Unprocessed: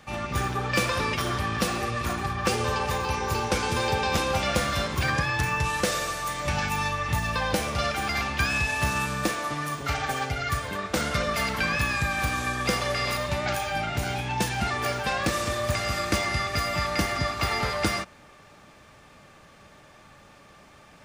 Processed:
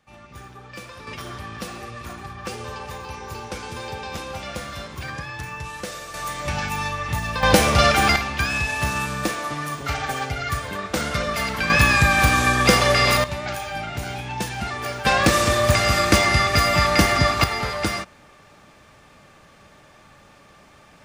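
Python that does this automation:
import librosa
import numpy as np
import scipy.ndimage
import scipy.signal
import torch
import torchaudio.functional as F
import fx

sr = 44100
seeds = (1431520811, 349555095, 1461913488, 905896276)

y = fx.gain(x, sr, db=fx.steps((0.0, -14.0), (1.07, -7.0), (6.14, 1.0), (7.43, 11.0), (8.16, 2.0), (11.7, 10.0), (13.24, -1.0), (15.05, 9.0), (17.44, 1.5)))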